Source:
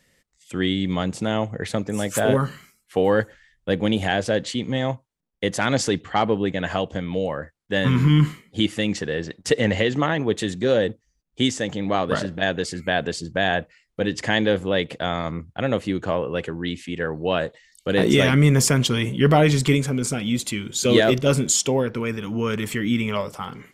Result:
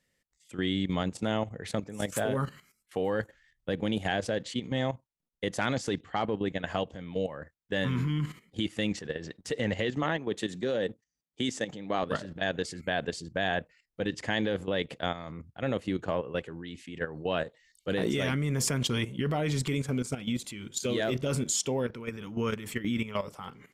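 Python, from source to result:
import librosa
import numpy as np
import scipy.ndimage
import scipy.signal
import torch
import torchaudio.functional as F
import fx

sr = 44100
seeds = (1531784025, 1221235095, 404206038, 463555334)

y = fx.highpass(x, sr, hz=130.0, slope=12, at=(10.03, 12.03))
y = fx.level_steps(y, sr, step_db=12)
y = F.gain(torch.from_numpy(y), -4.5).numpy()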